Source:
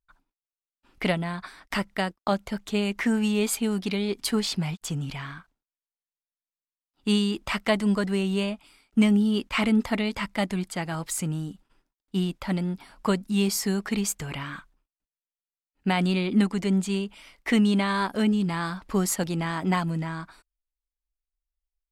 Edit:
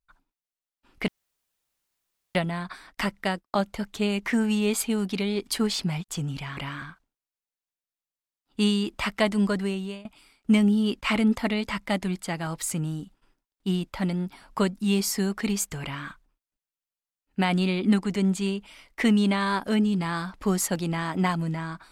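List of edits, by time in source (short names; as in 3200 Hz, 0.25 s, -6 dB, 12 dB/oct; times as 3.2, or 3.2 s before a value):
1.08 insert room tone 1.27 s
8.03–8.53 fade out, to -21 dB
14.31–14.56 copy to 5.3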